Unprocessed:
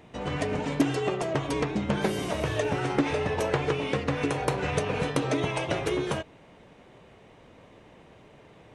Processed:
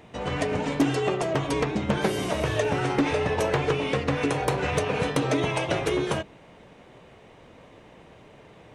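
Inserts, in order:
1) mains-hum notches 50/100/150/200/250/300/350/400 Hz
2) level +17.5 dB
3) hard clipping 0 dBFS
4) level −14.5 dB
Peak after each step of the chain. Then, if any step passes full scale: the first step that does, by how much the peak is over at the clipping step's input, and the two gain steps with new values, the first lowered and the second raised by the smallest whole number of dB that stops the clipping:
−11.5, +6.0, 0.0, −14.5 dBFS
step 2, 6.0 dB
step 2 +11.5 dB, step 4 −8.5 dB

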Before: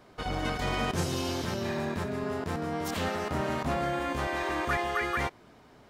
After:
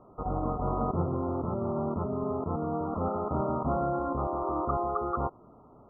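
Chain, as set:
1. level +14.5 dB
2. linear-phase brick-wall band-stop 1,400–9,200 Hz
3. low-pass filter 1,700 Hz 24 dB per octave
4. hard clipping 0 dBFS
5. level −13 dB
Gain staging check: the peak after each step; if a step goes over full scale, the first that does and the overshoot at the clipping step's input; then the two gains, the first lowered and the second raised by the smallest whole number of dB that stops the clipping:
−2.0, −3.0, −3.5, −3.5, −16.5 dBFS
no step passes full scale

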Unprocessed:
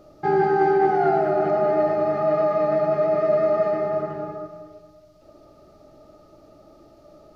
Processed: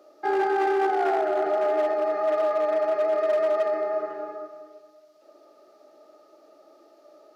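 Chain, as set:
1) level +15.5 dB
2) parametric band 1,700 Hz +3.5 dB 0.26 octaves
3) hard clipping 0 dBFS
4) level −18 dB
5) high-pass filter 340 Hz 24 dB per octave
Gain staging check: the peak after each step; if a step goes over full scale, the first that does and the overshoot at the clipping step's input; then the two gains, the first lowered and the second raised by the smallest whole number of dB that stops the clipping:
+7.0, +7.0, 0.0, −18.0, −14.0 dBFS
step 1, 7.0 dB
step 1 +8.5 dB, step 4 −11 dB

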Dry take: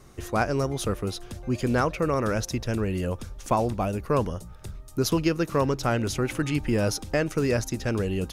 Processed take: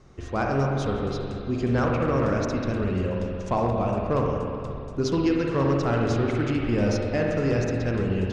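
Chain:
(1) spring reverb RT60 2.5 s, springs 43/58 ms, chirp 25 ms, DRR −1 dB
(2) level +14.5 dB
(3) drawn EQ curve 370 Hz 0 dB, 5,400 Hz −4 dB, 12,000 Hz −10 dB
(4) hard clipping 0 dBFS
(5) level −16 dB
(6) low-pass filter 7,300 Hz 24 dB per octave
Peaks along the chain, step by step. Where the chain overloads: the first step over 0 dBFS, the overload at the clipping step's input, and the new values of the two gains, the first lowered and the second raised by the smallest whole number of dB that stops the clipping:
−9.0, +5.5, +5.5, 0.0, −16.0, −15.5 dBFS
step 2, 5.5 dB
step 2 +8.5 dB, step 5 −10 dB

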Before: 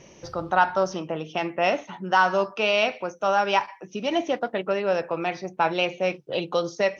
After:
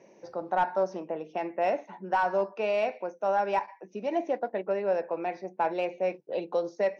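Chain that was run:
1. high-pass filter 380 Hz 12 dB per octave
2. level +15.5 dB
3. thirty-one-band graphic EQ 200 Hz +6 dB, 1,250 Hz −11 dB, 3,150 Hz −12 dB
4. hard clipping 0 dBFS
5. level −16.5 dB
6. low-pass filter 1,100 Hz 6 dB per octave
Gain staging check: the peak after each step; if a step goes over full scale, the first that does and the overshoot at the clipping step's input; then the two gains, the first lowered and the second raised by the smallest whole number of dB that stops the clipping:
−6.5, +9.0, +5.5, 0.0, −16.5, −17.0 dBFS
step 2, 5.5 dB
step 2 +9.5 dB, step 5 −10.5 dB

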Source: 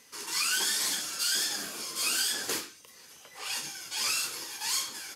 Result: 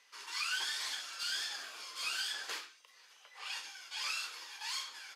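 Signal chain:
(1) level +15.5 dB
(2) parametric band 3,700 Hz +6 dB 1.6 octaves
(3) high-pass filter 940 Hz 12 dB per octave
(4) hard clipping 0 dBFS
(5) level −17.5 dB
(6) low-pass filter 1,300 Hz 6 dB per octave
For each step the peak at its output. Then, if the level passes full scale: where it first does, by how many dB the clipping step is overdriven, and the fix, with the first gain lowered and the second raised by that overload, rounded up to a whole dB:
+0.5, +4.5, +3.5, 0.0, −17.5, −24.5 dBFS
step 1, 3.5 dB
step 1 +11.5 dB, step 5 −13.5 dB

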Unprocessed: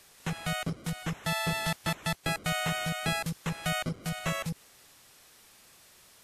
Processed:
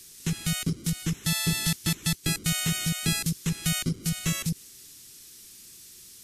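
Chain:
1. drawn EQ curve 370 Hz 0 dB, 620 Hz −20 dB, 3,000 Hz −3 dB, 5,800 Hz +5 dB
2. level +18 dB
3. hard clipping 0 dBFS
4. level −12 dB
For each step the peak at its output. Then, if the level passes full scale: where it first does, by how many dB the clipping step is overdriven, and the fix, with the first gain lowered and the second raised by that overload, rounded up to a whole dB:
−15.0, +3.0, 0.0, −12.0 dBFS
step 2, 3.0 dB
step 2 +15 dB, step 4 −9 dB

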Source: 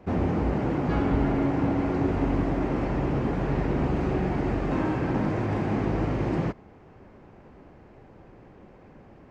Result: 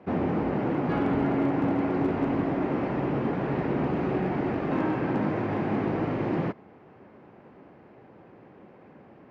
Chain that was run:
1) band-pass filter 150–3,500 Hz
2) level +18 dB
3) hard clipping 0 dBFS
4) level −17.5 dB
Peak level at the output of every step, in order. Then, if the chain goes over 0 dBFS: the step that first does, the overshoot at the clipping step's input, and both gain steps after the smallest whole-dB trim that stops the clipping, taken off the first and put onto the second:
−13.0, +5.0, 0.0, −17.5 dBFS
step 2, 5.0 dB
step 2 +13 dB, step 4 −12.5 dB

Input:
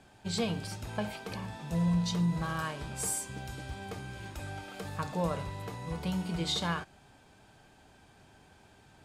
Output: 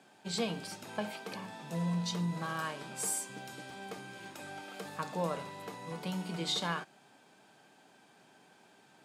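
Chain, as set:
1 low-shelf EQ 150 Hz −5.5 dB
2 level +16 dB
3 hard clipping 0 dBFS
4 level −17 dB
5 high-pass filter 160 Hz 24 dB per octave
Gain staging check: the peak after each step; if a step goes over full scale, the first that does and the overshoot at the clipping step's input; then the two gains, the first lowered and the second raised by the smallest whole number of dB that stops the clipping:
−20.0, −4.0, −4.0, −21.0, −21.0 dBFS
no step passes full scale

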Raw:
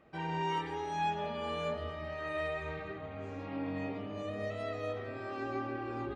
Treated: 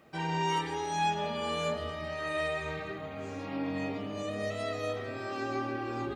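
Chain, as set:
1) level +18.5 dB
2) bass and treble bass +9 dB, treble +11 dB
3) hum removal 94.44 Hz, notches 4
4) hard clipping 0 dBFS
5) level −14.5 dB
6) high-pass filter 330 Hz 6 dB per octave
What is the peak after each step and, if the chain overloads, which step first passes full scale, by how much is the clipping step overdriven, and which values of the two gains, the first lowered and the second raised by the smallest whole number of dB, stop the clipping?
−5.0, −2.5, −2.5, −2.5, −17.0, −19.0 dBFS
no step passes full scale

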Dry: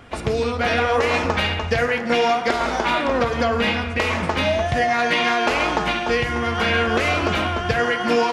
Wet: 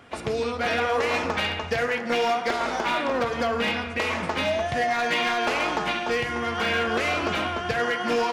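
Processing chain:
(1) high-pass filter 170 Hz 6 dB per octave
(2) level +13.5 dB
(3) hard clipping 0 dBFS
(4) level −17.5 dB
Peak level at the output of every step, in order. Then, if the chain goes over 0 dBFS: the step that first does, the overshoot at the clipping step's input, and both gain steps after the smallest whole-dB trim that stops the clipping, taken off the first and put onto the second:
−7.0, +6.5, 0.0, −17.5 dBFS
step 2, 6.5 dB
step 2 +6.5 dB, step 4 −10.5 dB

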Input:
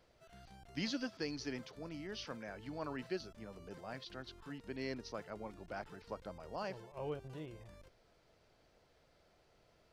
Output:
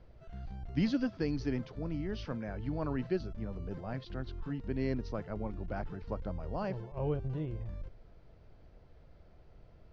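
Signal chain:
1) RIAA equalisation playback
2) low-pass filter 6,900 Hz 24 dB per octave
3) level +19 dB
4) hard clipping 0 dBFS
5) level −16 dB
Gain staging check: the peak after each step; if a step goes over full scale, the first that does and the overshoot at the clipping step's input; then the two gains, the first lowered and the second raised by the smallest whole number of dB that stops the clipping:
−22.0, −22.0, −3.0, −3.0, −19.0 dBFS
no step passes full scale

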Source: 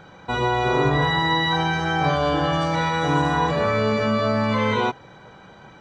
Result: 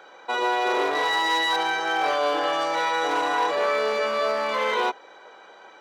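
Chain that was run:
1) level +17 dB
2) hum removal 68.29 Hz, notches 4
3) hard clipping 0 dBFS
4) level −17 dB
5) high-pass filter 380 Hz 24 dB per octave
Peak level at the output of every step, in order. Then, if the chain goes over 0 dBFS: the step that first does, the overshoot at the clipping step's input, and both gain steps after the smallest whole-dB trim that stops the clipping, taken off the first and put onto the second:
+8.0, +8.0, 0.0, −17.0, −12.0 dBFS
step 1, 8.0 dB
step 1 +9 dB, step 4 −9 dB

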